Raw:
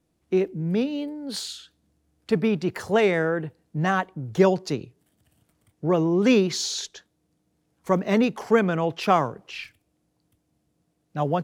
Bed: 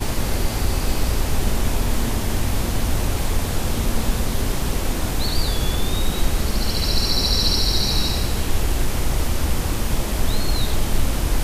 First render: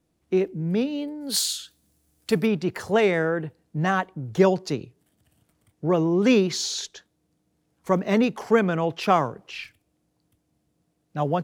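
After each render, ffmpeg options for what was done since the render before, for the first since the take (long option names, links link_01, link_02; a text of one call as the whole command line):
ffmpeg -i in.wav -filter_complex "[0:a]asplit=3[link_01][link_02][link_03];[link_01]afade=type=out:start_time=1.2:duration=0.02[link_04];[link_02]aemphasis=mode=production:type=75kf,afade=type=in:start_time=1.2:duration=0.02,afade=type=out:start_time=2.45:duration=0.02[link_05];[link_03]afade=type=in:start_time=2.45:duration=0.02[link_06];[link_04][link_05][link_06]amix=inputs=3:normalize=0" out.wav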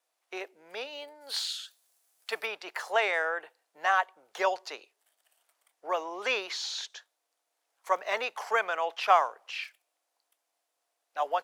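ffmpeg -i in.wav -filter_complex "[0:a]highpass=frequency=670:width=0.5412,highpass=frequency=670:width=1.3066,acrossover=split=4000[link_01][link_02];[link_02]acompressor=threshold=-45dB:ratio=4:attack=1:release=60[link_03];[link_01][link_03]amix=inputs=2:normalize=0" out.wav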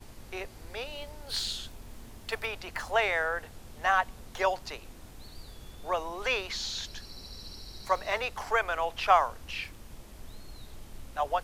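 ffmpeg -i in.wav -i bed.wav -filter_complex "[1:a]volume=-26dB[link_01];[0:a][link_01]amix=inputs=2:normalize=0" out.wav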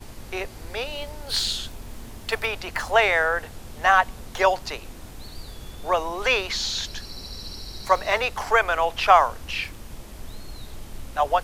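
ffmpeg -i in.wav -af "volume=8dB,alimiter=limit=-3dB:level=0:latency=1" out.wav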